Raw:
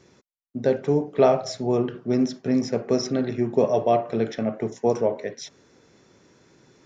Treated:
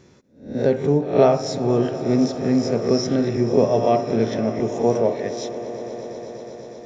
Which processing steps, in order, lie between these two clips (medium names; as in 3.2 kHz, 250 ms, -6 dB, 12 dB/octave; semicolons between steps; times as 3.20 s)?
reverse spectral sustain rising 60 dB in 0.43 s; bass shelf 270 Hz +6 dB; echo with a slow build-up 121 ms, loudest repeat 5, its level -18 dB